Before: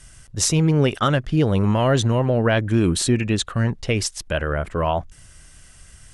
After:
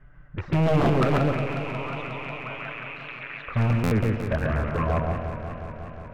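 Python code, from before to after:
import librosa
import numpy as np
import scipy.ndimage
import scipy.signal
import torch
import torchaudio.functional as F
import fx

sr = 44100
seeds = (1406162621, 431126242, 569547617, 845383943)

y = fx.rattle_buzz(x, sr, strikes_db=-25.0, level_db=-11.0)
y = scipy.signal.sosfilt(scipy.signal.butter(4, 1700.0, 'lowpass', fs=sr, output='sos'), y)
y = fx.env_flanger(y, sr, rest_ms=7.7, full_db=-15.0)
y = fx.highpass(y, sr, hz=1200.0, slope=24, at=(1.18, 3.47))
y = fx.echo_feedback(y, sr, ms=138, feedback_pct=35, wet_db=-3)
y = 10.0 ** (-15.5 / 20.0) * (np.abs((y / 10.0 ** (-15.5 / 20.0) + 3.0) % 4.0 - 2.0) - 1.0)
y = fx.buffer_glitch(y, sr, at_s=(3.83,), block=512, repeats=6)
y = fx.echo_warbled(y, sr, ms=180, feedback_pct=80, rate_hz=2.8, cents=128, wet_db=-10.0)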